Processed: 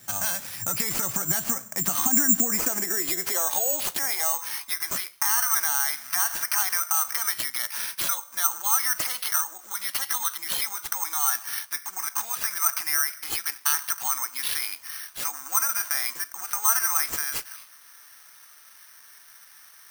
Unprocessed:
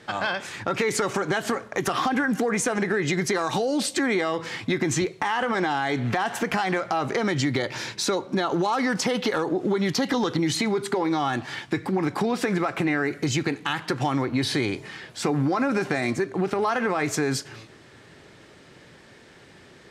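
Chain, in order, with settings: high-pass sweep 94 Hz -> 1.2 kHz, 0.90–4.86 s; modulation noise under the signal 32 dB; peaking EQ 420 Hz -12.5 dB 0.63 oct; careless resampling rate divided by 6×, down none, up zero stuff; trim -7.5 dB

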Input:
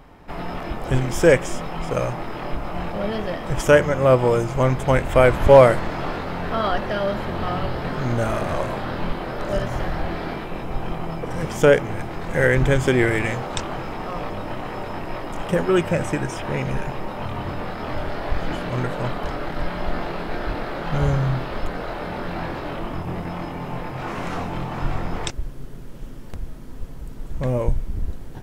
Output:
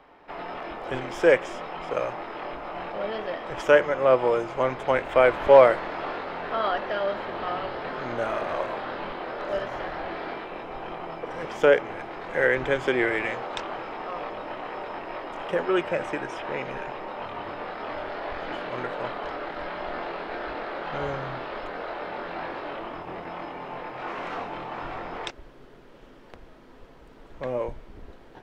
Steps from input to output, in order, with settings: three-band isolator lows -18 dB, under 310 Hz, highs -18 dB, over 4.5 kHz; trim -2.5 dB

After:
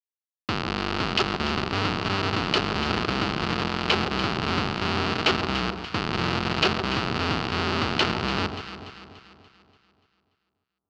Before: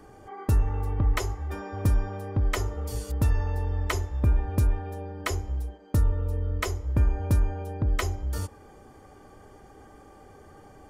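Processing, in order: elliptic band-stop 640–2500 Hz; Schmitt trigger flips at -33.5 dBFS; cabinet simulation 190–5000 Hz, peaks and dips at 280 Hz -5 dB, 550 Hz -9 dB, 1.3 kHz +7 dB, 2.8 kHz +8 dB, 4.5 kHz +8 dB; on a send: echo whose repeats swap between lows and highs 145 ms, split 1.1 kHz, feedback 69%, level -7.5 dB; on the sum: trim +8 dB

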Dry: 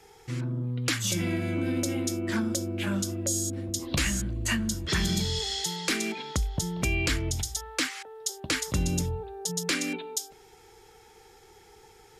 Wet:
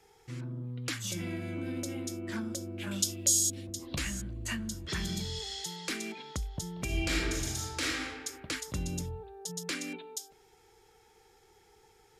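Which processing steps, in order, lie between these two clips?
2.91–3.67 s: resonant high shelf 2.1 kHz +11.5 dB, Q 1.5; 6.84–8.08 s: reverb throw, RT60 1.5 s, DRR -5.5 dB; trim -8 dB

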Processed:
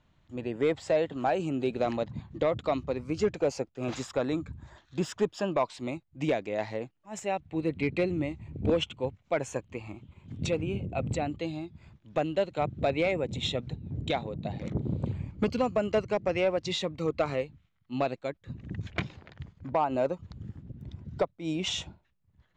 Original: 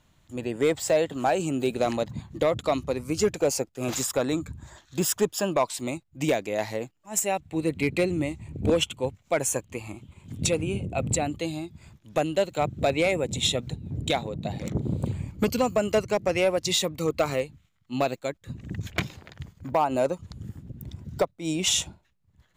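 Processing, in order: distance through air 160 m; trim -3 dB

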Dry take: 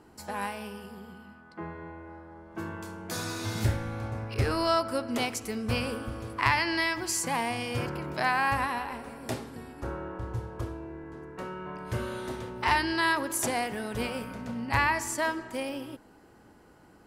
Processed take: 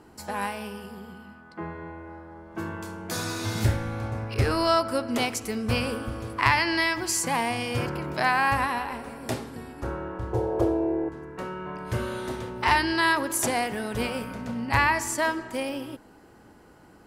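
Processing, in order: 10.33–11.09 s: high-order bell 520 Hz +14 dB; trim +3.5 dB

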